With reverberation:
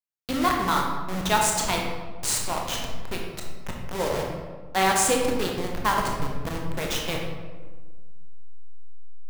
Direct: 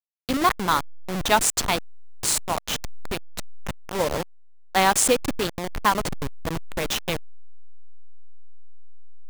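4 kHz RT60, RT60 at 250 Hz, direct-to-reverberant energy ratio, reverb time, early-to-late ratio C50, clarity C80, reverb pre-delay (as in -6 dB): 0.80 s, 1.8 s, -0.5 dB, 1.4 s, 2.5 dB, 4.5 dB, 19 ms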